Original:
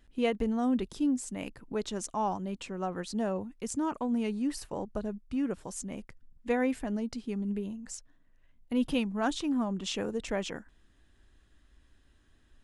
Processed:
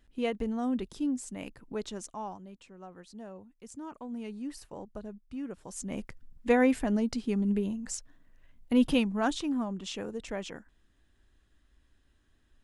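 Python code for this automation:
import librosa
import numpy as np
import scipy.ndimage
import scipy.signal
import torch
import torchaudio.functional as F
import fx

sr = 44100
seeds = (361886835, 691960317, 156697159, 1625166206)

y = fx.gain(x, sr, db=fx.line((1.85, -2.5), (2.59, -13.5), (3.48, -13.5), (4.41, -7.0), (5.57, -7.0), (5.99, 5.0), (8.78, 5.0), (9.88, -4.0)))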